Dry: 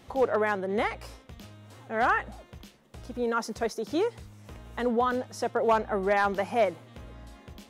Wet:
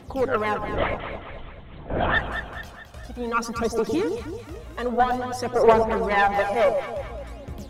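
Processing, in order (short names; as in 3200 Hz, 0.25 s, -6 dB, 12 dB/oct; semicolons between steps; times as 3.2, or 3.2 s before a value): phaser 0.53 Hz, delay 1.9 ms, feedback 64%; added harmonics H 4 -16 dB, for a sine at -7 dBFS; 0.58–2.16 LPC vocoder at 8 kHz whisper; echo with dull and thin repeats by turns 0.108 s, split 840 Hz, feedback 69%, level -5 dB; gain +1.5 dB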